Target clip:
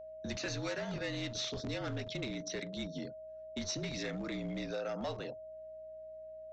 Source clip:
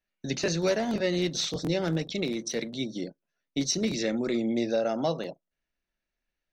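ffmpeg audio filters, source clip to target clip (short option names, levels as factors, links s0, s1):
-filter_complex "[0:a]bandreject=f=50:t=h:w=6,bandreject=f=100:t=h:w=6,bandreject=f=150:t=h:w=6,afreqshift=-47,acrossover=split=100|850[s0][s1][s2];[s0]acrusher=bits=5:dc=4:mix=0:aa=0.000001[s3];[s1]acompressor=threshold=0.0178:ratio=6[s4];[s3][s4][s2]amix=inputs=3:normalize=0,aeval=exprs='val(0)+0.000355*(sin(2*PI*60*n/s)+sin(2*PI*2*60*n/s)/2+sin(2*PI*3*60*n/s)/3+sin(2*PI*4*60*n/s)/4+sin(2*PI*5*60*n/s)/5)':c=same,lowpass=f=3600:p=1,aresample=16000,asoftclip=type=tanh:threshold=0.0355,aresample=44100,aeval=exprs='val(0)+0.00708*sin(2*PI*630*n/s)':c=same,volume=0.75"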